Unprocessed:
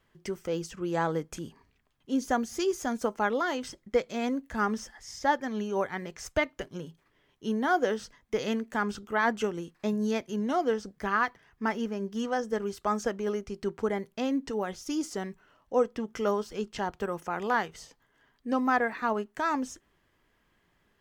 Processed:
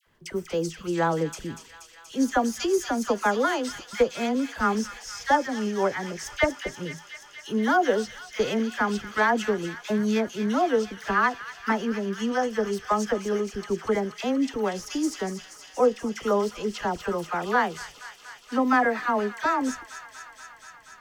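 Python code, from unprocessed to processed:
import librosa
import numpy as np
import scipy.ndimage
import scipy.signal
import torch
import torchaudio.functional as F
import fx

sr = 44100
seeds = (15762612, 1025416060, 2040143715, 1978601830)

p1 = fx.dispersion(x, sr, late='lows', ms=68.0, hz=1100.0)
p2 = p1 + fx.echo_wet_highpass(p1, sr, ms=239, feedback_pct=81, hz=2200.0, wet_db=-8.0, dry=0)
y = p2 * librosa.db_to_amplitude(4.5)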